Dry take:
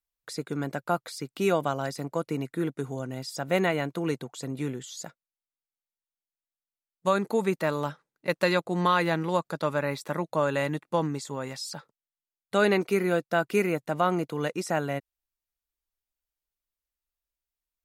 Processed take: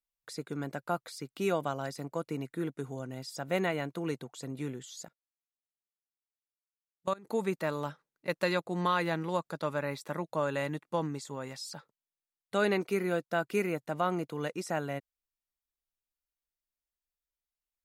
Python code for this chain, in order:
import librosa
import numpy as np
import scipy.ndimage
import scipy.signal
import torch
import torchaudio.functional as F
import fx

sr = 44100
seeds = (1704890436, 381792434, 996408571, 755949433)

y = fx.level_steps(x, sr, step_db=23, at=(5.04, 7.26), fade=0.02)
y = F.gain(torch.from_numpy(y), -5.5).numpy()